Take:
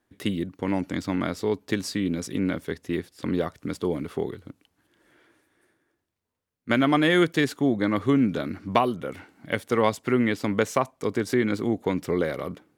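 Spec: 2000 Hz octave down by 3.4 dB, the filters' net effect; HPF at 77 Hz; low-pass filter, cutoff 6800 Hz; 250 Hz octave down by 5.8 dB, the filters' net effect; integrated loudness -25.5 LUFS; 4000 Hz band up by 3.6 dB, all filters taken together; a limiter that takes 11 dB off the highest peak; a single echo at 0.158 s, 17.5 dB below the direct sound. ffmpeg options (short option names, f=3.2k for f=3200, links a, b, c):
-af "highpass=77,lowpass=6.8k,equalizer=f=250:t=o:g=-7.5,equalizer=f=2k:t=o:g=-5.5,equalizer=f=4k:t=o:g=7,alimiter=limit=-17dB:level=0:latency=1,aecho=1:1:158:0.133,volume=5.5dB"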